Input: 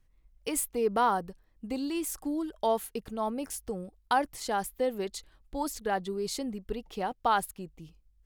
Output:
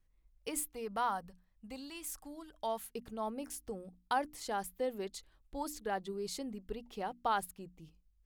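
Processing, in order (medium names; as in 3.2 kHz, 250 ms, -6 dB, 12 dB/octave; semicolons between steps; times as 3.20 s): hum notches 60/120/180/240/300 Hz; 0.63–2.90 s: peaking EQ 350 Hz -12.5 dB 0.97 oct; trim -6.5 dB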